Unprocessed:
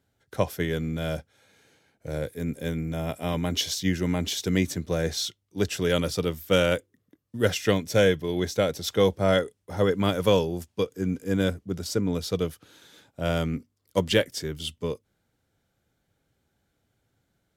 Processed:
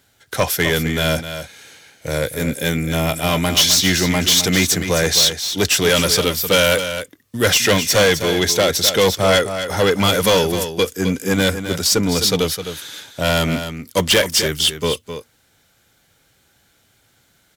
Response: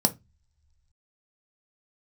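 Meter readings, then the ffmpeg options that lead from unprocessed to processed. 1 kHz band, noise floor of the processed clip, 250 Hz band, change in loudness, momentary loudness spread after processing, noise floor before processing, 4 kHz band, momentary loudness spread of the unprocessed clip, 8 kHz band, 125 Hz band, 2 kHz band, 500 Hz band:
+11.0 dB, -60 dBFS, +6.5 dB, +10.5 dB, 11 LU, -76 dBFS, +15.5 dB, 10 LU, +18.0 dB, +6.5 dB, +13.0 dB, +7.0 dB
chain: -af "acontrast=86,tiltshelf=f=970:g=-6.5,asoftclip=type=tanh:threshold=-17dB,aecho=1:1:259:0.335,volume=7.5dB"

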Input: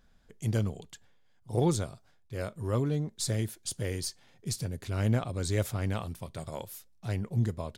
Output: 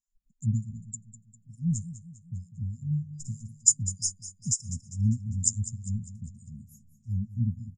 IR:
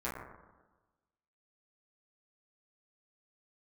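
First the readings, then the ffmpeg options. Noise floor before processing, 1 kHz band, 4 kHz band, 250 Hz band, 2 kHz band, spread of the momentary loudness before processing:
-63 dBFS, under -40 dB, -3.5 dB, -1.0 dB, under -40 dB, 12 LU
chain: -filter_complex "[0:a]afftdn=nr=28:nf=-40,lowpass=f=7.1k:t=q:w=14,asplit=2[a][b];[b]alimiter=limit=-15dB:level=0:latency=1:release=278,volume=-3dB[c];[a][c]amix=inputs=2:normalize=0,afftfilt=real='re*(1-between(b*sr/4096,250,4900))':imag='im*(1-between(b*sr/4096,250,4900))':win_size=4096:overlap=0.75,acrossover=split=610[d][e];[d]aeval=exprs='val(0)*(1-1/2+1/2*cos(2*PI*3.3*n/s))':c=same[f];[e]aeval=exprs='val(0)*(1-1/2-1/2*cos(2*PI*3.3*n/s))':c=same[g];[f][g]amix=inputs=2:normalize=0,asplit=2[h][i];[i]aecho=0:1:200|400|600|800|1000:0.2|0.0958|0.046|0.0221|0.0106[j];[h][j]amix=inputs=2:normalize=0"

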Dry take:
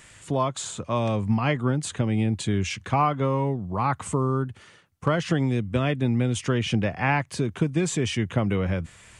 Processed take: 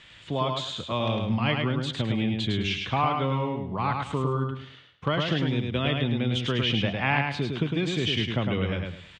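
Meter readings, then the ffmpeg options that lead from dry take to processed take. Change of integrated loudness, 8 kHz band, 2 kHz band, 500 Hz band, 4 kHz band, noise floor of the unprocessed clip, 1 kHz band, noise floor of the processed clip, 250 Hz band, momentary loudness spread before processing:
-1.5 dB, under -10 dB, +1.0 dB, -2.5 dB, +6.5 dB, -52 dBFS, -2.0 dB, -50 dBFS, -2.5 dB, 5 LU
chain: -af "lowpass=f=3.5k:t=q:w=3.5,aecho=1:1:105|210|315|420:0.631|0.177|0.0495|0.0139,volume=-4dB"

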